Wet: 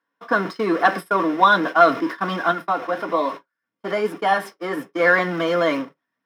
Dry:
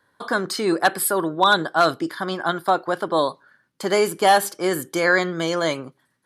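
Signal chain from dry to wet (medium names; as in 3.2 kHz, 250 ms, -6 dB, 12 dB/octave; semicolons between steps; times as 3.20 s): jump at every zero crossing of -24 dBFS; low-pass 3.1 kHz 6 dB/octave; gate -25 dBFS, range -49 dB; 2.51–5.00 s: flange 1.2 Hz, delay 2.5 ms, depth 7.3 ms, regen +52%; reverberation RT60 0.10 s, pre-delay 3 ms, DRR 4.5 dB; trim -7 dB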